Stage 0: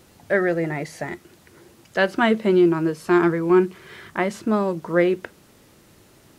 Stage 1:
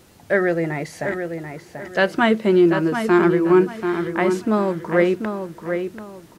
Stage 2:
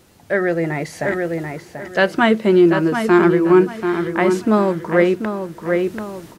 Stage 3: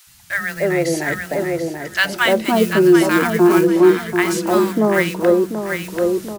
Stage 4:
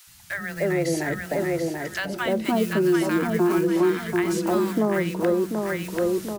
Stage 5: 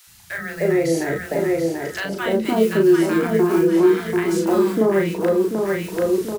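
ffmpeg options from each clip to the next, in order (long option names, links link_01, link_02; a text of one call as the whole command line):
ffmpeg -i in.wav -filter_complex "[0:a]asplit=2[link_01][link_02];[link_02]adelay=737,lowpass=frequency=3600:poles=1,volume=-7dB,asplit=2[link_03][link_04];[link_04]adelay=737,lowpass=frequency=3600:poles=1,volume=0.3,asplit=2[link_05][link_06];[link_06]adelay=737,lowpass=frequency=3600:poles=1,volume=0.3,asplit=2[link_07][link_08];[link_08]adelay=737,lowpass=frequency=3600:poles=1,volume=0.3[link_09];[link_01][link_03][link_05][link_07][link_09]amix=inputs=5:normalize=0,volume=1.5dB" out.wav
ffmpeg -i in.wav -af "dynaudnorm=framelen=350:gausssize=3:maxgain=11.5dB,volume=-1dB" out.wav
ffmpeg -i in.wav -filter_complex "[0:a]acrusher=bits=8:mode=log:mix=0:aa=0.000001,highshelf=frequency=3400:gain=9.5,acrossover=split=180|1000[link_01][link_02][link_03];[link_01]adelay=70[link_04];[link_02]adelay=300[link_05];[link_04][link_05][link_03]amix=inputs=3:normalize=0,volume=1.5dB" out.wav
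ffmpeg -i in.wav -filter_complex "[0:a]acrossover=split=310|700[link_01][link_02][link_03];[link_01]acompressor=threshold=-21dB:ratio=4[link_04];[link_02]acompressor=threshold=-25dB:ratio=4[link_05];[link_03]acompressor=threshold=-28dB:ratio=4[link_06];[link_04][link_05][link_06]amix=inputs=3:normalize=0,volume=-2dB" out.wav
ffmpeg -i in.wav -filter_complex "[0:a]equalizer=frequency=420:width_type=o:width=0.4:gain=7.5,asplit=2[link_01][link_02];[link_02]adelay=36,volume=-3dB[link_03];[link_01][link_03]amix=inputs=2:normalize=0" out.wav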